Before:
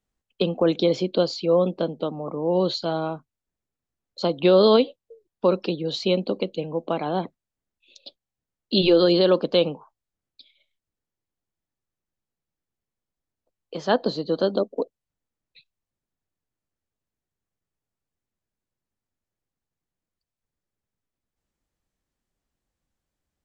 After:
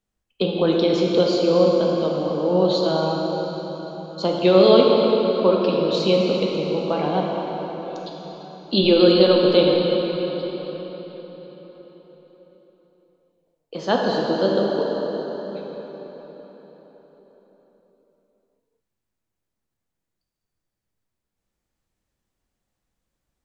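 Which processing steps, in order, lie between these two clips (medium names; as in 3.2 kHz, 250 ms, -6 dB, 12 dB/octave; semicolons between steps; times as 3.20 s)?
plate-style reverb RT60 4.8 s, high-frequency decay 0.75×, DRR -2 dB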